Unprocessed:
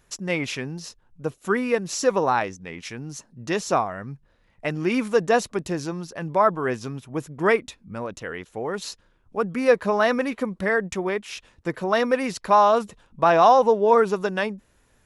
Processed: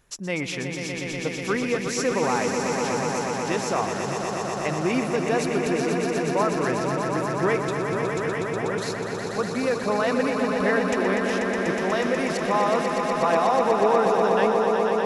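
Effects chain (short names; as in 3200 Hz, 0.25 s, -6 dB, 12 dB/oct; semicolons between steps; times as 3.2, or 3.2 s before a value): limiter -13.5 dBFS, peak gain reduction 8.5 dB; swelling echo 0.122 s, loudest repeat 5, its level -7 dB; gain -1.5 dB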